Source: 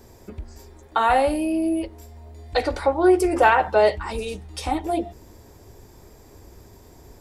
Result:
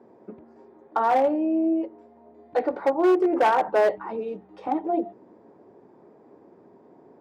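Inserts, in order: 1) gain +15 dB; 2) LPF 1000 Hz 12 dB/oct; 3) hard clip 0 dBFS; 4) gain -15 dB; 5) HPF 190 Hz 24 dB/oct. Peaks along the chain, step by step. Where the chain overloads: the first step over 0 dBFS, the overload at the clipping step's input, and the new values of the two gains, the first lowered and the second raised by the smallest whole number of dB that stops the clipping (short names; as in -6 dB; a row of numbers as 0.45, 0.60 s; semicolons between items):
+10.5, +8.0, 0.0, -15.0, -10.0 dBFS; step 1, 8.0 dB; step 1 +7 dB, step 4 -7 dB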